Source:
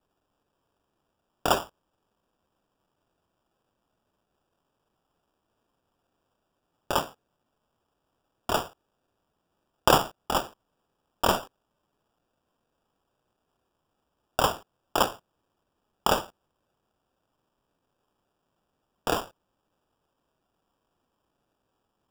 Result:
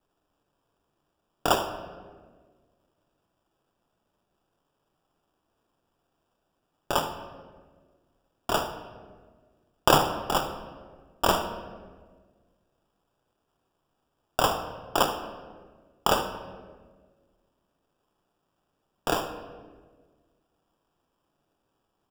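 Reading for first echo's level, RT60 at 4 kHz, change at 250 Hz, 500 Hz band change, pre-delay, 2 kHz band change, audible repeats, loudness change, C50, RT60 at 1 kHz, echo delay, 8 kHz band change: -16.5 dB, 0.95 s, +1.5 dB, +1.0 dB, 3 ms, +0.5 dB, 1, 0.0 dB, 8.5 dB, 1.3 s, 76 ms, +0.5 dB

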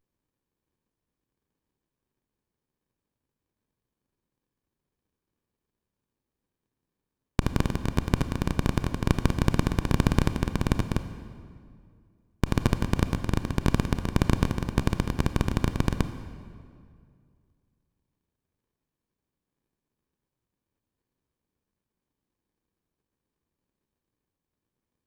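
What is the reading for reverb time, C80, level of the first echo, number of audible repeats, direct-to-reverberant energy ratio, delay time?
2.2 s, 12.0 dB, no echo, no echo, 10.0 dB, no echo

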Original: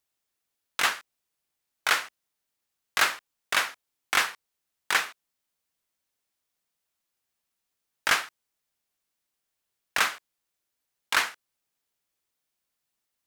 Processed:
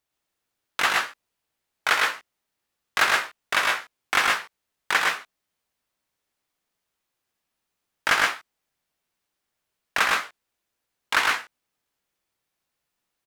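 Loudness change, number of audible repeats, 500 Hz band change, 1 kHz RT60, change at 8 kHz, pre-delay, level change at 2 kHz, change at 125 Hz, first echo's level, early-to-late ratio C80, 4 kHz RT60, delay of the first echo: +3.5 dB, 1, +6.0 dB, no reverb, 0.0 dB, no reverb, +4.5 dB, +6.0 dB, -4.0 dB, no reverb, no reverb, 108 ms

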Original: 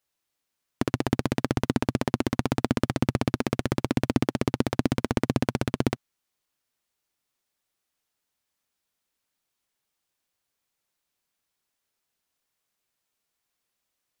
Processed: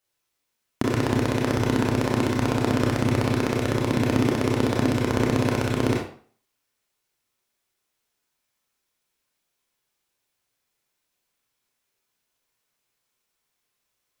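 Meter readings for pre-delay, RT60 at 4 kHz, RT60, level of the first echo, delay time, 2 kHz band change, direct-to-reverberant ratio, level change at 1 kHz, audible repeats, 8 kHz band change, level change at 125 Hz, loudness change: 25 ms, 0.40 s, 0.45 s, no echo, no echo, +5.0 dB, -2.5 dB, +4.0 dB, no echo, +3.5 dB, +4.5 dB, +4.0 dB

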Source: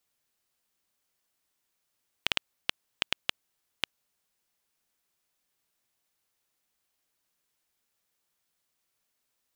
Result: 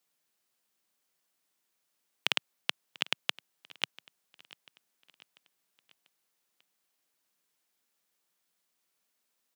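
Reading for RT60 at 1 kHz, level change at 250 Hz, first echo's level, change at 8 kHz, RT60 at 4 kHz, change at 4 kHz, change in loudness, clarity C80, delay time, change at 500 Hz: no reverb, 0.0 dB, -21.5 dB, 0.0 dB, no reverb, 0.0 dB, 0.0 dB, no reverb, 692 ms, 0.0 dB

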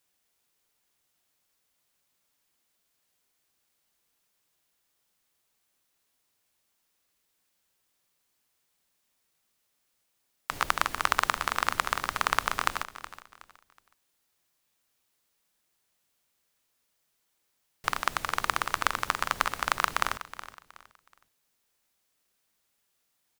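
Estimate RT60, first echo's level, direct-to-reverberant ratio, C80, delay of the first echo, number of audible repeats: no reverb, -14.5 dB, no reverb, no reverb, 370 ms, 2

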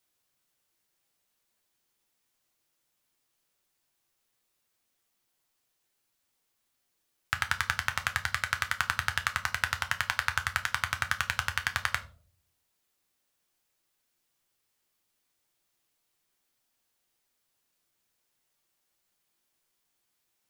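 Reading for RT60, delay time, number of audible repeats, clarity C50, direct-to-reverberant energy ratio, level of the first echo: 0.50 s, no echo, no echo, 16.0 dB, 6.5 dB, no echo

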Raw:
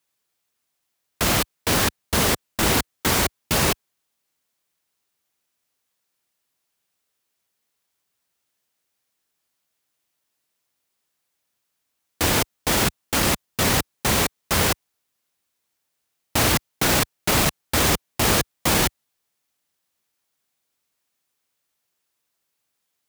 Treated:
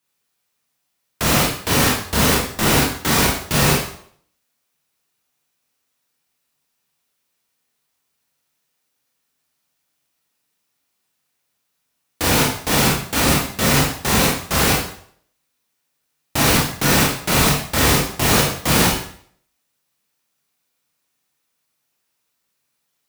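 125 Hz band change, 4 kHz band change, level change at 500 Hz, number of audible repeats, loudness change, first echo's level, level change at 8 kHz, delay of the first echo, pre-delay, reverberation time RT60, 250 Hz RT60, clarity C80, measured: +6.0 dB, +3.5 dB, +4.0 dB, no echo, +4.0 dB, no echo, +3.5 dB, no echo, 19 ms, 0.60 s, 0.55 s, 7.0 dB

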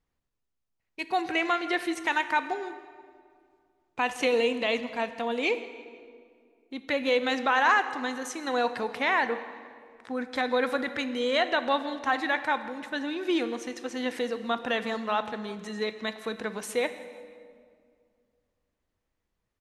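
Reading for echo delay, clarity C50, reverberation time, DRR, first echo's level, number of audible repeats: 165 ms, 11.5 dB, 2.2 s, 10.5 dB, -21.0 dB, 3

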